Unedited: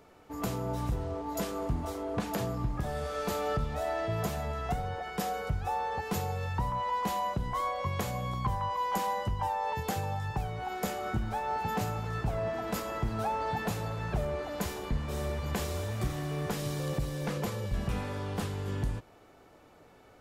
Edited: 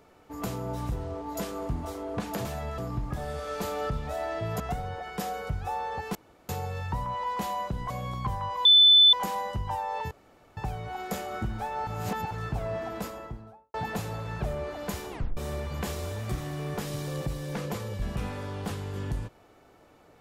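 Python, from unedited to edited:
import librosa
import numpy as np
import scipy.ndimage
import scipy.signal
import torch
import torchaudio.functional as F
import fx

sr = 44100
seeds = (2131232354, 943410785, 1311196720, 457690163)

y = fx.studio_fade_out(x, sr, start_s=12.53, length_s=0.93)
y = fx.edit(y, sr, fx.move(start_s=4.27, length_s=0.33, to_s=2.45),
    fx.insert_room_tone(at_s=6.15, length_s=0.34),
    fx.cut(start_s=7.56, length_s=0.54),
    fx.insert_tone(at_s=8.85, length_s=0.48, hz=3510.0, db=-13.0),
    fx.room_tone_fill(start_s=9.83, length_s=0.46),
    fx.reverse_span(start_s=11.59, length_s=0.44),
    fx.tape_stop(start_s=14.83, length_s=0.26), tone=tone)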